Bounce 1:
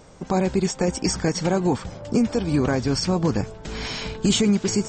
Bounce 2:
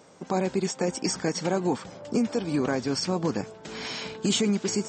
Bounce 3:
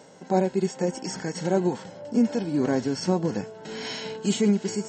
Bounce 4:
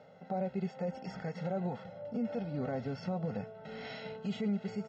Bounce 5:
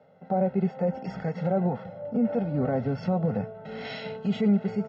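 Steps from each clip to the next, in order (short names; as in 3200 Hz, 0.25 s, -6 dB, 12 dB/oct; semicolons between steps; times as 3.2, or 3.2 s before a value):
HPF 190 Hz 12 dB/oct; gain -3.5 dB
harmonic-percussive split percussive -12 dB; notch comb 1200 Hz; noise-modulated level, depth 60%; gain +8.5 dB
comb 1.5 ms, depth 81%; limiter -18.5 dBFS, peak gain reduction 8.5 dB; air absorption 300 m; gain -7.5 dB
LPF 1500 Hz 6 dB/oct; in parallel at -0.5 dB: compressor, threshold -43 dBFS, peak gain reduction 12.5 dB; on the sum: three-band expander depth 70%; gain +8 dB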